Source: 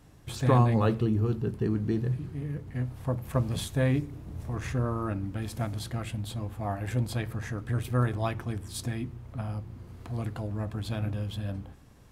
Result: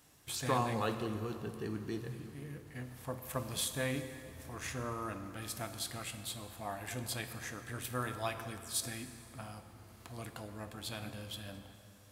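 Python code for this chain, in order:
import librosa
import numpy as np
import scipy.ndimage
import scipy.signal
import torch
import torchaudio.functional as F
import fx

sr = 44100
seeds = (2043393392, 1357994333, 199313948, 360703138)

y = fx.tilt_eq(x, sr, slope=3.0)
y = fx.rev_plate(y, sr, seeds[0], rt60_s=2.9, hf_ratio=0.7, predelay_ms=0, drr_db=8.0)
y = y * librosa.db_to_amplitude(-5.5)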